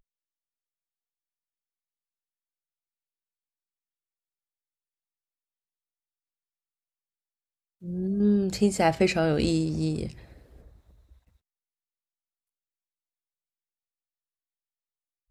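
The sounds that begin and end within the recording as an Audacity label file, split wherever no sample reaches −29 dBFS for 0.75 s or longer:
7.880000	10.070000	sound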